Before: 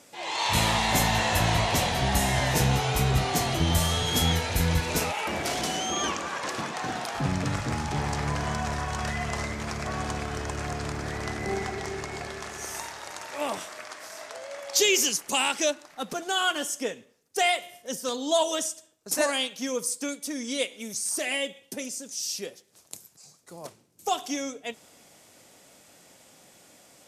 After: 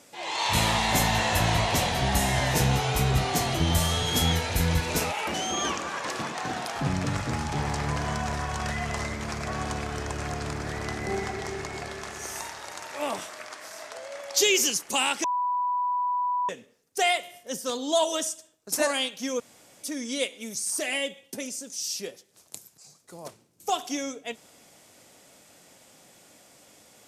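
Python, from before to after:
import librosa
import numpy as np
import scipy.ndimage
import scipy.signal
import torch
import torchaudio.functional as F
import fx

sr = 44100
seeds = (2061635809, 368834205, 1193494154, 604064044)

y = fx.edit(x, sr, fx.cut(start_s=5.34, length_s=0.39),
    fx.bleep(start_s=15.63, length_s=1.25, hz=987.0, db=-23.5),
    fx.room_tone_fill(start_s=19.79, length_s=0.43), tone=tone)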